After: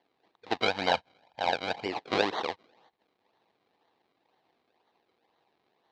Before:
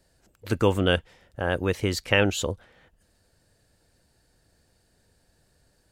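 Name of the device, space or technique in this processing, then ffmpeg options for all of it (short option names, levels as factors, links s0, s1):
circuit-bent sampling toy: -filter_complex "[0:a]acrusher=samples=34:mix=1:aa=0.000001:lfo=1:lforange=34:lforate=2,highpass=560,equalizer=f=570:t=q:w=4:g=-7,equalizer=f=830:t=q:w=4:g=4,equalizer=f=1400:t=q:w=4:g=-8,equalizer=f=3900:t=q:w=4:g=7,lowpass=f=4400:w=0.5412,lowpass=f=4400:w=1.3066,equalizer=f=3500:t=o:w=0.8:g=-3.5,asettb=1/sr,asplit=3[s0][s1][s2];[s0]atrim=end=0.624[s3];[s1]atrim=start=0.62:end=1.86,asetpts=PTS-STARTPTS,afade=t=in:d=0.004:c=qsin,afade=t=out:st=1.236:d=0.004:c=qsin,aecho=1:1:1.3:0.62,atrim=end_sample=54684[s4];[s2]atrim=start=1.856[s5];[s3][s4]acrossfade=d=0.004:c1=hsin:c2=qsin[s6];[s6][s5]acrossfade=d=0.004:c1=qsin:c2=hsin,lowshelf=f=460:g=4.5"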